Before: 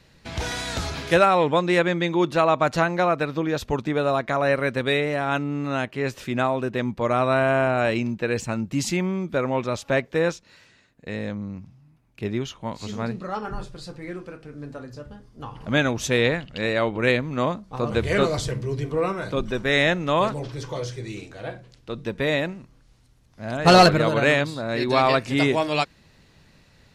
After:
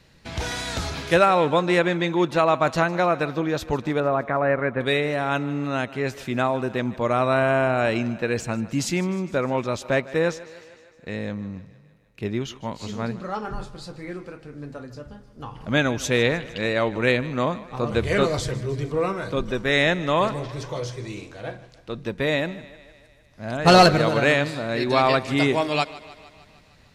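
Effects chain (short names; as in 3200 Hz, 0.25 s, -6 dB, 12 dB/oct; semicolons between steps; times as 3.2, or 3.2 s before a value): 4–4.81 LPF 2100 Hz 24 dB/oct; thinning echo 0.153 s, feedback 64%, high-pass 200 Hz, level -18 dB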